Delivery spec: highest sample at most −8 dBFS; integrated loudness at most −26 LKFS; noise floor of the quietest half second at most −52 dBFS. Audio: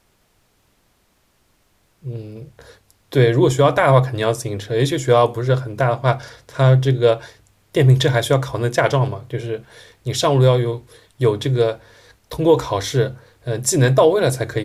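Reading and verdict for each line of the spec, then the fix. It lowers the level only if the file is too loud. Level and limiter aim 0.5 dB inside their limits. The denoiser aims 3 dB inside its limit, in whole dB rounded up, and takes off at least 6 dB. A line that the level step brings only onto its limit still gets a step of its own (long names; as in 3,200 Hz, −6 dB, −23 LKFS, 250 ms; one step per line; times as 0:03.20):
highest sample −3.0 dBFS: out of spec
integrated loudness −17.5 LKFS: out of spec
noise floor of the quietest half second −62 dBFS: in spec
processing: level −9 dB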